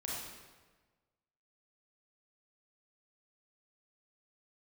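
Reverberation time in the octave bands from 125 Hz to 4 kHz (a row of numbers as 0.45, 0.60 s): 1.5, 1.4, 1.4, 1.3, 1.2, 1.0 s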